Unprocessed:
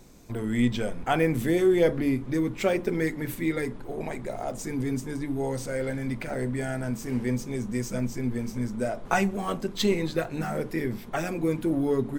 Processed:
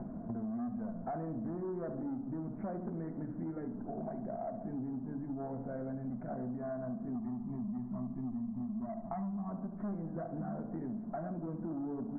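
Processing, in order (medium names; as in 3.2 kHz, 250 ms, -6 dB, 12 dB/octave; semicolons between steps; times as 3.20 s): tracing distortion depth 0.024 ms; small resonant body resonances 210/660 Hz, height 18 dB, ringing for 40 ms; saturation -14 dBFS, distortion -10 dB; 7.15–9.51 s: comb 1 ms, depth 84%; tape echo 71 ms, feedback 66%, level -8 dB, low-pass 1.1 kHz; compression 6:1, threshold -44 dBFS, peak gain reduction 30 dB; steep low-pass 1.6 kHz 48 dB/octave; trim +4 dB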